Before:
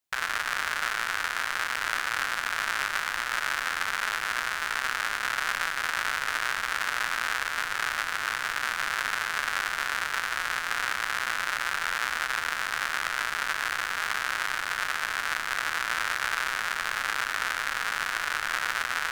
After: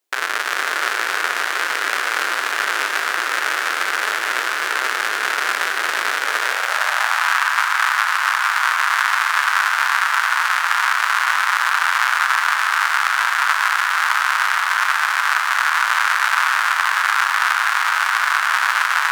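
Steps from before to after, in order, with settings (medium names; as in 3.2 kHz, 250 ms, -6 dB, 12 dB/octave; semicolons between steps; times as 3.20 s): two-band feedback delay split 2.9 kHz, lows 463 ms, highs 283 ms, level -6.5 dB; high-pass sweep 380 Hz -> 990 Hz, 6.23–7.34 s; trim +7 dB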